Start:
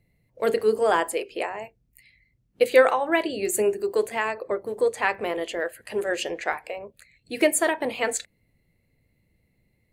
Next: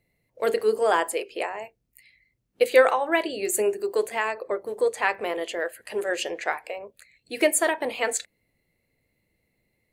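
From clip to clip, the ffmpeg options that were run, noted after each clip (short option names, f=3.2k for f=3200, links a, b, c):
-af "bass=f=250:g=-9,treble=f=4k:g=1"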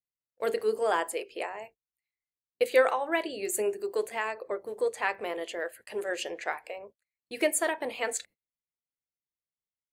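-af "agate=range=-30dB:threshold=-45dB:ratio=16:detection=peak,volume=-5.5dB"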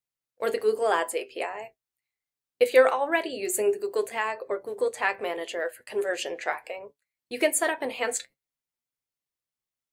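-af "flanger=delay=6.9:depth=1.4:regen=62:speed=1.3:shape=triangular,volume=7.5dB"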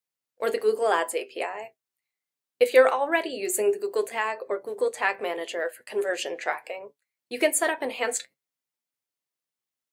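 -af "highpass=150,volume=1dB"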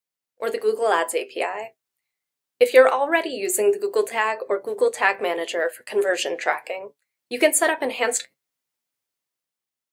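-af "dynaudnorm=f=270:g=7:m=6.5dB"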